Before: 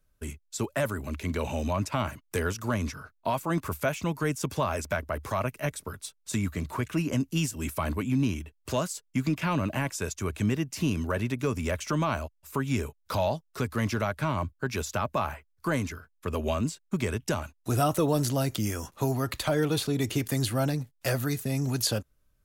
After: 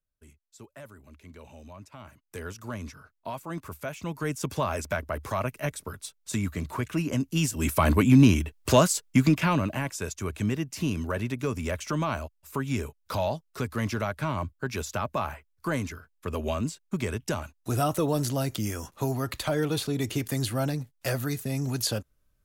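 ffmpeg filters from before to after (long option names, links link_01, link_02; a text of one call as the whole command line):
ffmpeg -i in.wav -af "volume=9.5dB,afade=type=in:start_time=2:duration=0.57:silence=0.316228,afade=type=in:start_time=3.88:duration=0.61:silence=0.421697,afade=type=in:start_time=7.31:duration=0.7:silence=0.334965,afade=type=out:start_time=8.95:duration=0.78:silence=0.298538" out.wav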